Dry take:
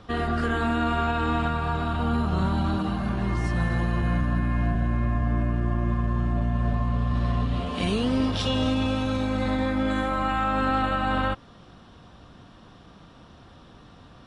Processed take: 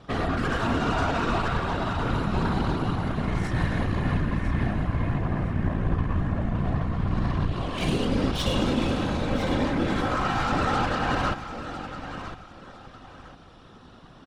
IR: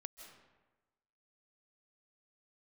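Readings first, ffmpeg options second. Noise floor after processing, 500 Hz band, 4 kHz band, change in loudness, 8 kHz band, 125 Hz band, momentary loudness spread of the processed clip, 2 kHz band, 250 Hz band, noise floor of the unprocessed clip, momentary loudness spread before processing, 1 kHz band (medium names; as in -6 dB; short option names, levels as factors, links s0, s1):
-49 dBFS, +0.5 dB, +0.5 dB, -1.0 dB, no reading, -0.5 dB, 11 LU, +0.5 dB, -1.0 dB, -50 dBFS, 3 LU, -0.5 dB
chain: -af "aeval=exprs='0.211*(cos(1*acos(clip(val(0)/0.211,-1,1)))-cos(1*PI/2))+0.0211*(cos(8*acos(clip(val(0)/0.211,-1,1)))-cos(8*PI/2))':c=same,aecho=1:1:1004|2008|3012:0.282|0.0761|0.0205,afftfilt=real='hypot(re,im)*cos(2*PI*random(0))':imag='hypot(re,im)*sin(2*PI*random(1))':win_size=512:overlap=0.75,volume=1.78"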